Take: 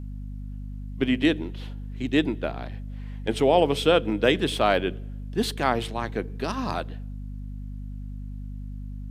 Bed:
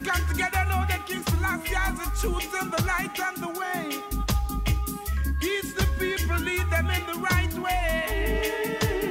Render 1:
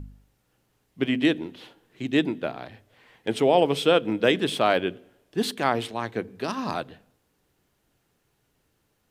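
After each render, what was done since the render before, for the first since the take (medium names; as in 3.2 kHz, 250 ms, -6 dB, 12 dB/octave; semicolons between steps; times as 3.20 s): de-hum 50 Hz, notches 5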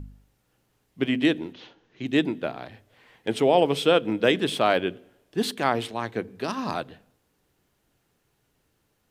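1.53–2.06 s: elliptic low-pass 6.4 kHz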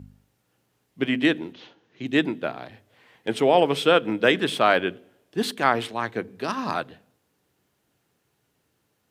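dynamic bell 1.5 kHz, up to +6 dB, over -36 dBFS, Q 0.98; high-pass 88 Hz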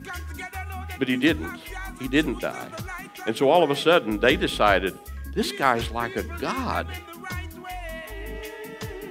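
add bed -9.5 dB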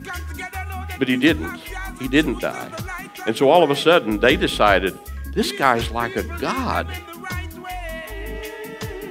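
trim +4.5 dB; peak limiter -1 dBFS, peak gain reduction 1.5 dB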